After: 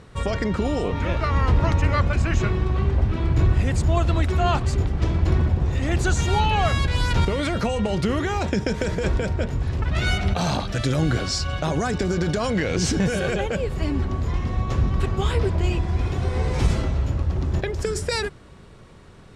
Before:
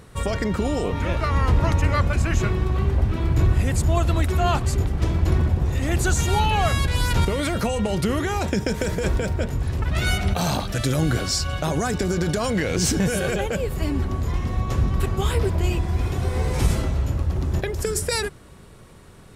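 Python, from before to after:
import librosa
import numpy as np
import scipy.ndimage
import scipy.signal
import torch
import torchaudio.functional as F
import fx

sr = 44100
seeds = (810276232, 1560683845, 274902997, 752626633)

y = scipy.signal.sosfilt(scipy.signal.butter(2, 6100.0, 'lowpass', fs=sr, output='sos'), x)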